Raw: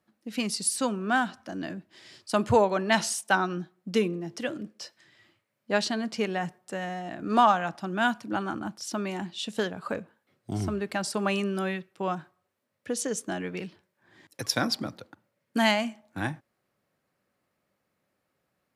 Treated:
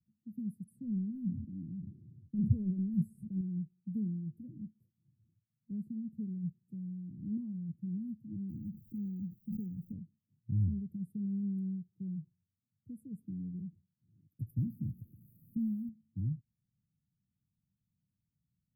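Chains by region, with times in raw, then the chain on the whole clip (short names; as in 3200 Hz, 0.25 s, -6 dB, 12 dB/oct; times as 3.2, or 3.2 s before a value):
0.64–3.41 low-pass opened by the level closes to 720 Hz, open at -21 dBFS + sustainer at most 38 dB/s
8.49–9.92 LPF 3500 Hz + companded quantiser 6-bit + backwards sustainer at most 66 dB/s
14.58–15.89 switching spikes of -19 dBFS + LPF 5800 Hz + low shelf 84 Hz +11.5 dB
whole clip: inverse Chebyshev band-stop 690–6300 Hz, stop band 70 dB; high shelf 6800 Hz -11 dB; gain +3 dB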